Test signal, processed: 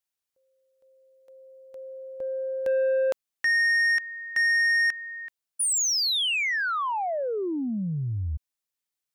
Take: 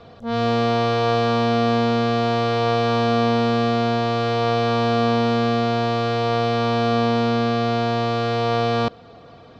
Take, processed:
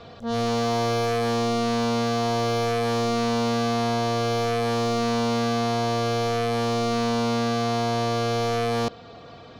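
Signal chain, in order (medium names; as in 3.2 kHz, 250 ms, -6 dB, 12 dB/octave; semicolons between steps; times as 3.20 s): treble shelf 2 kHz +5.5 dB; saturation -20 dBFS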